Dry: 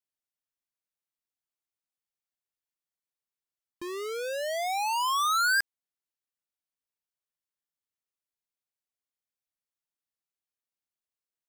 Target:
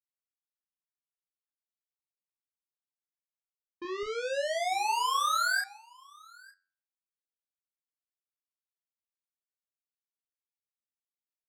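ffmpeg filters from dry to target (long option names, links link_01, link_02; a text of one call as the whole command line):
ffmpeg -i in.wav -filter_complex "[0:a]acompressor=threshold=-29dB:ratio=8,asetnsamples=nb_out_samples=441:pad=0,asendcmd='4.03 equalizer g -13.5',equalizer=frequency=83:width_type=o:width=1.9:gain=-5.5,afftdn=noise_reduction=33:noise_floor=-44,asplit=2[link_01][link_02];[link_02]adelay=32,volume=-3.5dB[link_03];[link_01][link_03]amix=inputs=2:normalize=0,dynaudnorm=framelen=170:gausssize=7:maxgain=8dB,aecho=1:1:901:0.0944,agate=range=-33dB:threshold=-35dB:ratio=3:detection=peak,flanger=delay=5.3:depth=5.9:regen=85:speed=0.22:shape=sinusoidal,volume=-4dB" out.wav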